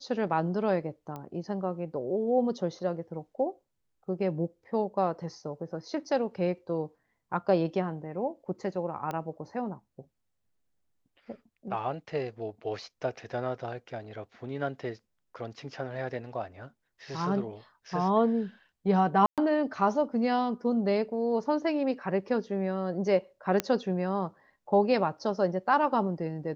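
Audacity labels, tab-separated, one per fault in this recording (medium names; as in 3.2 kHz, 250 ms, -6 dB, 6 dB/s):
1.160000	1.160000	pop -26 dBFS
9.110000	9.110000	pop -21 dBFS
19.260000	19.380000	dropout 117 ms
23.600000	23.600000	pop -12 dBFS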